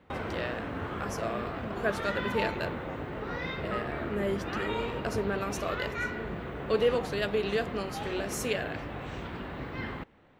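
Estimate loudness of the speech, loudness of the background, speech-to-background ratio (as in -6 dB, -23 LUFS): -34.0 LUFS, -36.5 LUFS, 2.5 dB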